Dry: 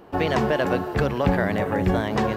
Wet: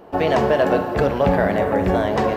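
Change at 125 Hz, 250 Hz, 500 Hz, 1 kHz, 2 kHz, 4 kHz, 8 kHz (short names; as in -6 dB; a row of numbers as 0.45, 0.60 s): 0.0 dB, +2.0 dB, +6.0 dB, +5.0 dB, +1.5 dB, +1.0 dB, n/a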